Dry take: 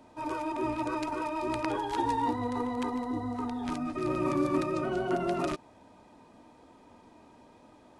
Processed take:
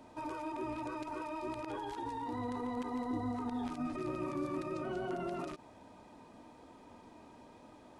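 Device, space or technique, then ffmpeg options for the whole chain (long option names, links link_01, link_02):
de-esser from a sidechain: -filter_complex "[0:a]asplit=2[link_01][link_02];[link_02]highpass=frequency=4200:poles=1,apad=whole_len=352642[link_03];[link_01][link_03]sidechaincompress=threshold=-51dB:ratio=8:attack=2.5:release=57"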